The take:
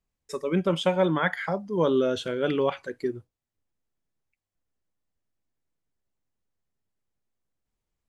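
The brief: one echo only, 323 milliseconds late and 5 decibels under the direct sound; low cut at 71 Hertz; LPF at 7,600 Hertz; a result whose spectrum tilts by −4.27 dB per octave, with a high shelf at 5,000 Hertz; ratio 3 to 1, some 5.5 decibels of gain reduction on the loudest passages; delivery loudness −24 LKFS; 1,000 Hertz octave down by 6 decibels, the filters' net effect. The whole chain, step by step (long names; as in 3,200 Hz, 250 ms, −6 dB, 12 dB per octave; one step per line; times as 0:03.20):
high-pass filter 71 Hz
low-pass filter 7,600 Hz
parametric band 1,000 Hz −8.5 dB
high-shelf EQ 5,000 Hz +8.5 dB
downward compressor 3 to 1, threshold −27 dBFS
single-tap delay 323 ms −5 dB
level +6.5 dB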